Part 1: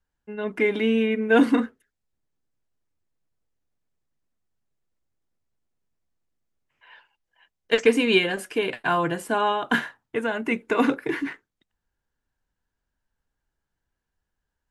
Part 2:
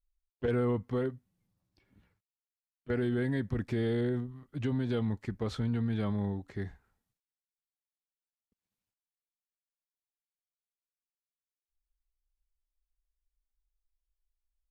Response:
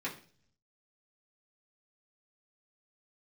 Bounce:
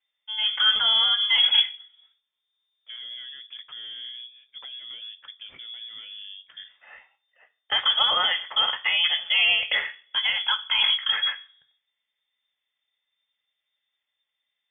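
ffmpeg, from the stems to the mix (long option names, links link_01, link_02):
-filter_complex "[0:a]alimiter=limit=-15.5dB:level=0:latency=1:release=24,volume=-0.5dB,asplit=2[link_01][link_02];[link_02]volume=-5.5dB[link_03];[1:a]highpass=210,alimiter=level_in=6dB:limit=-24dB:level=0:latency=1:release=31,volume=-6dB,acompressor=threshold=-43dB:ratio=1.5,volume=0.5dB,asplit=2[link_04][link_05];[link_05]volume=-15.5dB[link_06];[2:a]atrim=start_sample=2205[link_07];[link_03][link_06]amix=inputs=2:normalize=0[link_08];[link_08][link_07]afir=irnorm=-1:irlink=0[link_09];[link_01][link_04][link_09]amix=inputs=3:normalize=0,lowpass=frequency=3100:width_type=q:width=0.5098,lowpass=frequency=3100:width_type=q:width=0.6013,lowpass=frequency=3100:width_type=q:width=0.9,lowpass=frequency=3100:width_type=q:width=2.563,afreqshift=-3600"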